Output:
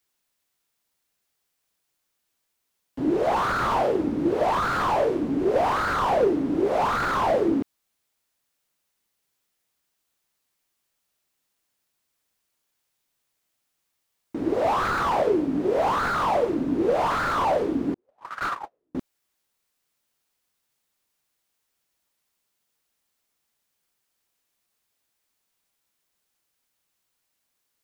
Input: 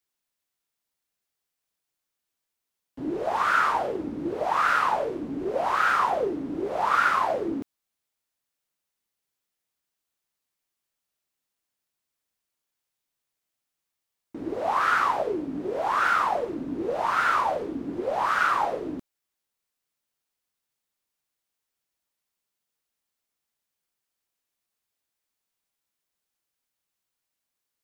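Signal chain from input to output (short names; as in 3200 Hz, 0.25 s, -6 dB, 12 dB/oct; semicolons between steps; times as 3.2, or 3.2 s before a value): 17.94–18.95 gate -20 dBFS, range -52 dB; slew limiter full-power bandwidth 37 Hz; gain +7 dB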